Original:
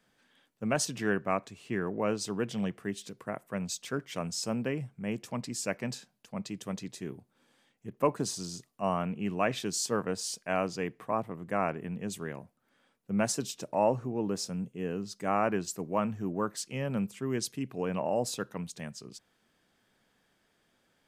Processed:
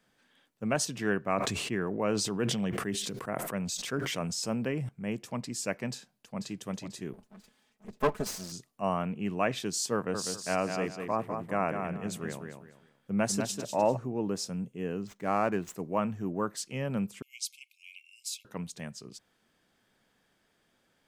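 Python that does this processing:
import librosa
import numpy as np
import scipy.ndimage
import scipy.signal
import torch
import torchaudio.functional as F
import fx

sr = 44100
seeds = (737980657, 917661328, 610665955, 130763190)

y = fx.sustainer(x, sr, db_per_s=29.0, at=(1.34, 4.89))
y = fx.echo_throw(y, sr, start_s=5.9, length_s=0.6, ms=490, feedback_pct=40, wet_db=-8.0)
y = fx.lower_of_two(y, sr, delay_ms=4.7, at=(7.13, 8.52))
y = fx.echo_feedback(y, sr, ms=199, feedback_pct=27, wet_db=-6, at=(9.94, 13.97))
y = fx.median_filter(y, sr, points=9, at=(15.07, 15.75))
y = fx.brickwall_highpass(y, sr, low_hz=2100.0, at=(17.22, 18.45))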